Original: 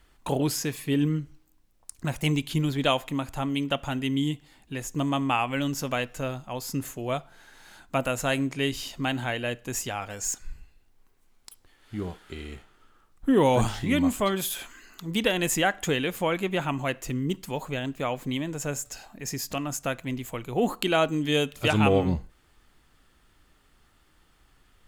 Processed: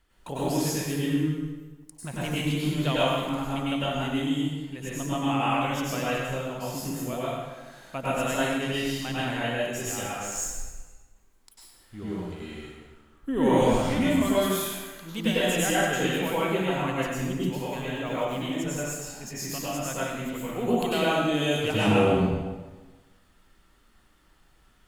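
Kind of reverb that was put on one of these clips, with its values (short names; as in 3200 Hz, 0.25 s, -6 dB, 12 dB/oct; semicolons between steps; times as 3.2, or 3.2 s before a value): plate-style reverb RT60 1.3 s, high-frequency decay 0.8×, pre-delay 85 ms, DRR -8.5 dB; gain -8.5 dB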